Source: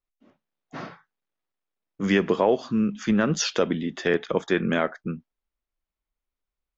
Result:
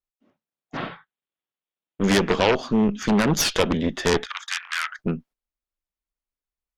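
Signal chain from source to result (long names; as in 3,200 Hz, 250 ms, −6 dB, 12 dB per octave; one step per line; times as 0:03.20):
harmonic generator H 3 −8 dB, 5 −11 dB, 6 −20 dB, 8 −14 dB, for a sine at −8 dBFS
noise gate −51 dBFS, range −11 dB
0:00.77–0:02.04: high shelf with overshoot 4,500 Hz −10 dB, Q 3
0:04.26–0:04.99: Butterworth high-pass 1,200 Hz 36 dB per octave
level +3.5 dB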